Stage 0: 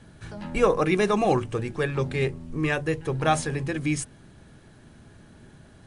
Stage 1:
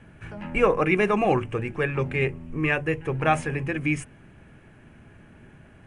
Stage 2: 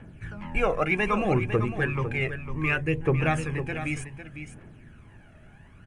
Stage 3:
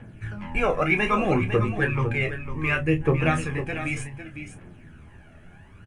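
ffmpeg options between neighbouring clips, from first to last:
-af "highshelf=f=3.2k:t=q:w=3:g=-7.5"
-filter_complex "[0:a]aphaser=in_gain=1:out_gain=1:delay=1.6:decay=0.61:speed=0.65:type=triangular,asplit=2[a][b];[b]aecho=0:1:503:0.316[c];[a][c]amix=inputs=2:normalize=0,volume=-3.5dB"
-filter_complex "[0:a]flanger=delay=8.3:depth=5.1:regen=45:speed=0.49:shape=triangular,asplit=2[a][b];[b]adelay=28,volume=-9dB[c];[a][c]amix=inputs=2:normalize=0,volume=6dB"

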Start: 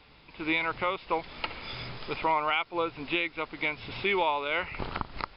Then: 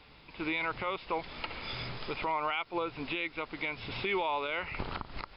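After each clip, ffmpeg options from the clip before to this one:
-af "alimiter=limit=-22.5dB:level=0:latency=1:release=96"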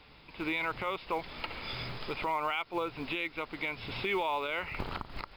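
-af "acrusher=bits=8:mode=log:mix=0:aa=0.000001"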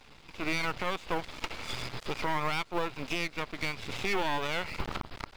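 -af "aeval=exprs='max(val(0),0)':c=same,volume=5dB"

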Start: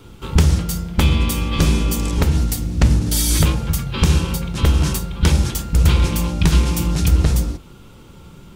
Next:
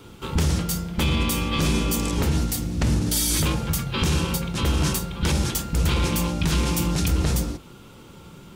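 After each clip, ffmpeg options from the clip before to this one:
-af "lowshelf=f=85:g=-11,alimiter=limit=-13dB:level=0:latency=1:release=11"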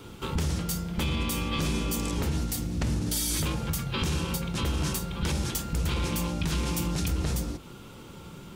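-af "acompressor=threshold=-30dB:ratio=2"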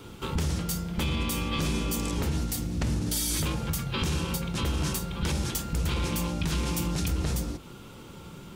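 -af anull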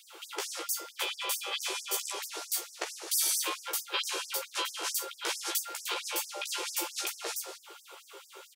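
-filter_complex "[0:a]asplit=2[a][b];[b]adelay=15,volume=-2.5dB[c];[a][c]amix=inputs=2:normalize=0,afftfilt=real='re*gte(b*sr/1024,320*pow(5100/320,0.5+0.5*sin(2*PI*4.5*pts/sr)))':imag='im*gte(b*sr/1024,320*pow(5100/320,0.5+0.5*sin(2*PI*4.5*pts/sr)))':win_size=1024:overlap=0.75"

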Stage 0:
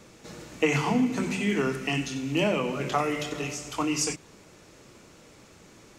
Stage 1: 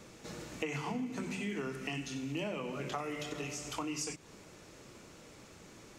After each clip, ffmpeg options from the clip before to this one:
-af "acompressor=threshold=-36dB:ratio=3,volume=-2dB"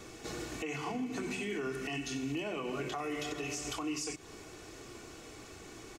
-af "aecho=1:1:2.7:0.53,alimiter=level_in=8dB:limit=-24dB:level=0:latency=1:release=136,volume=-8dB,volume=4dB"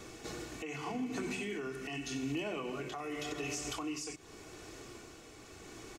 -af "tremolo=f=0.85:d=0.37"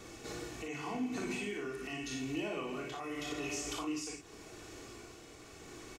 -af "aecho=1:1:39|56:0.501|0.562,volume=-2dB"

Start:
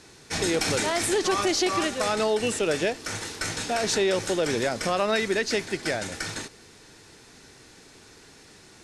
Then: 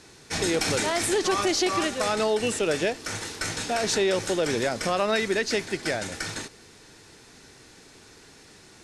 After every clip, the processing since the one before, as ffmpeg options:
-af anull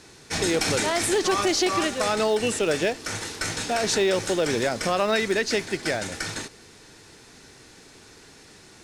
-af "acrusher=bits=9:mode=log:mix=0:aa=0.000001,volume=1.5dB"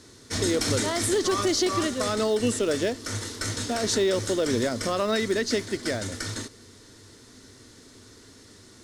-af "equalizer=f=100:t=o:w=0.33:g=9,equalizer=f=160:t=o:w=0.33:g=-7,equalizer=f=250:t=o:w=0.33:g=7,equalizer=f=800:t=o:w=0.33:g=-10,equalizer=f=1.6k:t=o:w=0.33:g=-4,equalizer=f=2.5k:t=o:w=0.33:g=-10,volume=-1dB"

